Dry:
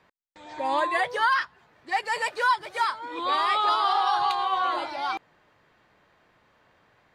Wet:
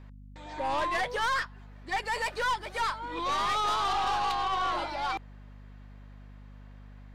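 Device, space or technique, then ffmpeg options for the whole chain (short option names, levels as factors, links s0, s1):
valve amplifier with mains hum: -af "aeval=exprs='(tanh(17.8*val(0)+0.25)-tanh(0.25))/17.8':c=same,aeval=exprs='val(0)+0.00447*(sin(2*PI*50*n/s)+sin(2*PI*2*50*n/s)/2+sin(2*PI*3*50*n/s)/3+sin(2*PI*4*50*n/s)/4+sin(2*PI*5*50*n/s)/5)':c=same"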